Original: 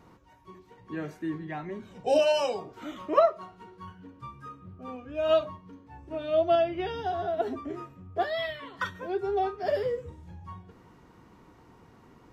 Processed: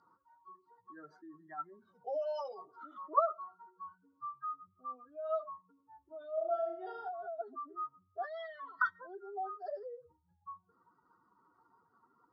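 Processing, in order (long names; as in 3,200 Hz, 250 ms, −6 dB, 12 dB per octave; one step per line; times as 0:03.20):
expanding power law on the bin magnitudes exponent 2
pair of resonant band-passes 2,500 Hz, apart 1.8 octaves
0:06.34–0:07.09: flutter between parallel walls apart 6 metres, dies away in 0.56 s
level +8 dB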